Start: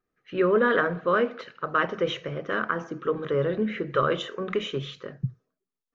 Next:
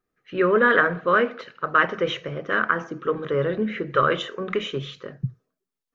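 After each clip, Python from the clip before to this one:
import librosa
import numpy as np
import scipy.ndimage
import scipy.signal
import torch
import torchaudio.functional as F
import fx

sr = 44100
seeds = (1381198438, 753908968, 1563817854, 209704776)

y = fx.dynamic_eq(x, sr, hz=1800.0, q=1.0, threshold_db=-36.0, ratio=4.0, max_db=6)
y = y * 10.0 ** (1.5 / 20.0)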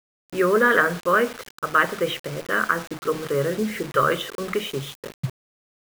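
y = fx.quant_dither(x, sr, seeds[0], bits=6, dither='none')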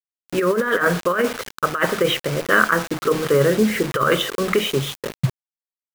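y = fx.over_compress(x, sr, threshold_db=-21.0, ratio=-0.5)
y = y * 10.0 ** (5.5 / 20.0)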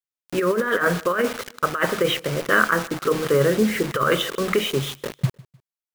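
y = fx.echo_feedback(x, sr, ms=152, feedback_pct=38, wet_db=-23.5)
y = y * 10.0 ** (-2.0 / 20.0)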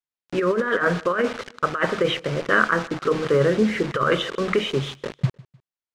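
y = fx.air_absorb(x, sr, metres=100.0)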